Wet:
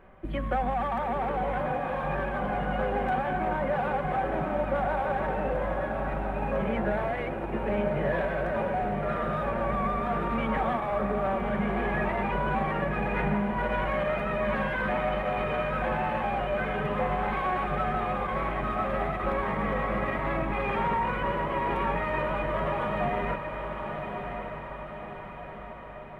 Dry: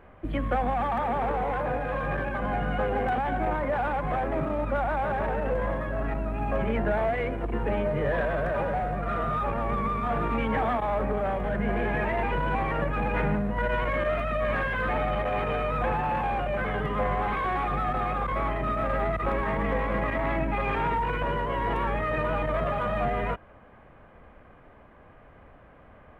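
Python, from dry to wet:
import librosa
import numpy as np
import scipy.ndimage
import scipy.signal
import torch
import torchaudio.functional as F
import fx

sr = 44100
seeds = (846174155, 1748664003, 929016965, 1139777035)

p1 = x + 0.38 * np.pad(x, (int(5.3 * sr / 1000.0), 0))[:len(x)]
p2 = p1 + fx.echo_diffused(p1, sr, ms=1131, feedback_pct=55, wet_db=-6, dry=0)
y = F.gain(torch.from_numpy(p2), -2.5).numpy()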